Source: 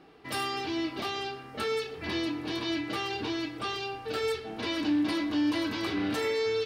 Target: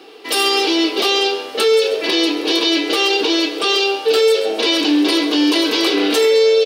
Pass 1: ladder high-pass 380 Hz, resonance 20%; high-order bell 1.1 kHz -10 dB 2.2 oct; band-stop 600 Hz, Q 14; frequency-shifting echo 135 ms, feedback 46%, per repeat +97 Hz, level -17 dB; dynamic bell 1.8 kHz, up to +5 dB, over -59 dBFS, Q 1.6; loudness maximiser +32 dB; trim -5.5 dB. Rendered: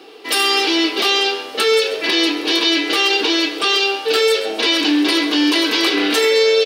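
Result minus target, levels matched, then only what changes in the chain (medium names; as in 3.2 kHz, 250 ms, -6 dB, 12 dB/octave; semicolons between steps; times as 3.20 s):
2 kHz band +3.0 dB
change: dynamic bell 490 Hz, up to +5 dB, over -59 dBFS, Q 1.6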